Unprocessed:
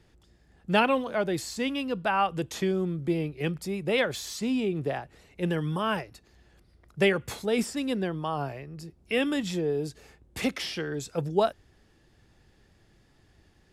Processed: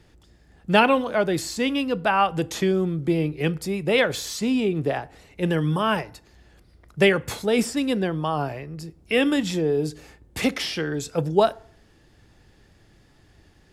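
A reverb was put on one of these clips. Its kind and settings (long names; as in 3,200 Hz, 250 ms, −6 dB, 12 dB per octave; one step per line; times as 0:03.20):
feedback delay network reverb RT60 0.53 s, low-frequency decay 0.95×, high-frequency decay 0.6×, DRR 17 dB
level +5.5 dB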